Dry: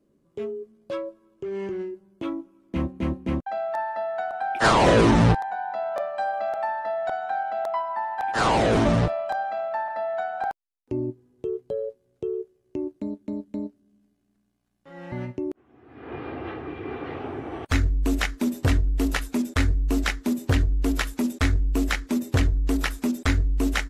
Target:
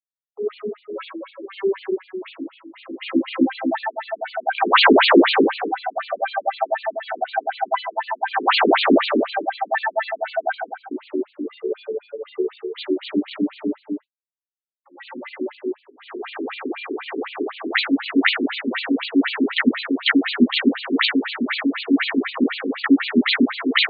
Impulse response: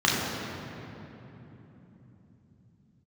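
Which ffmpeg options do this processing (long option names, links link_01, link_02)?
-filter_complex "[0:a]asettb=1/sr,asplit=3[link_01][link_02][link_03];[link_01]atrim=end=2.234[link_04];[link_02]atrim=start=2.23:end=2.86,asetpts=PTS-STARTPTS,afade=type=in:duration=0.004:curve=qsin,afade=type=out:start_time=0.626:duration=0.004:curve=qsin,acompressor=threshold=-42dB:ratio=3[link_05];[link_03]atrim=start=2.856[link_06];[link_04][link_05]acrossfade=duration=0.004:curve1=hsin:curve2=qsin[link_07];[link_07][link_06]acrossfade=duration=0.004:curve1=qsin:curve2=hsin,asettb=1/sr,asplit=3[link_08][link_09][link_10];[link_08]atrim=end=9.684[link_11];[link_09]atrim=start=9.68:end=10.18,asetpts=PTS-STARTPTS,afade=type=in:duration=0.004:curve=qsin,afade=type=out:start_time=0.496:duration=0.004:curve=qsin,equalizer=frequency=2600:width_type=o:width=2.8:gain=7.5[link_12];[link_10]atrim=start=10.176[link_13];[link_11][link_12]acrossfade=duration=0.004:curve1=hsin:curve2=qsin[link_14];[link_14][link_13]acrossfade=duration=0.004:curve1=qsin:curve2=hsin,asplit=3[link_15][link_16][link_17];[link_15]afade=type=out:start_time=12.37:duration=0.02[link_18];[link_16]acrusher=bits=5:mix=0:aa=0.5,afade=type=in:start_time=12.37:duration=0.02,afade=type=out:start_time=13.44:duration=0.02[link_19];[link_17]afade=type=in:start_time=13.44:duration=0.02[link_20];[link_18][link_19][link_20]amix=inputs=3:normalize=0,aeval=exprs='sgn(val(0))*max(abs(val(0))-0.00335,0)':channel_layout=same,crystalizer=i=4.5:c=0[link_21];[1:a]atrim=start_sample=2205,afade=type=out:start_time=0.43:duration=0.01,atrim=end_sample=19404[link_22];[link_21][link_22]afir=irnorm=-1:irlink=0,afftfilt=real='re*between(b*sr/1024,300*pow(3400/300,0.5+0.5*sin(2*PI*4*pts/sr))/1.41,300*pow(3400/300,0.5+0.5*sin(2*PI*4*pts/sr))*1.41)':imag='im*between(b*sr/1024,300*pow(3400/300,0.5+0.5*sin(2*PI*4*pts/sr))/1.41,300*pow(3400/300,0.5+0.5*sin(2*PI*4*pts/sr))*1.41)':win_size=1024:overlap=0.75,volume=-6dB"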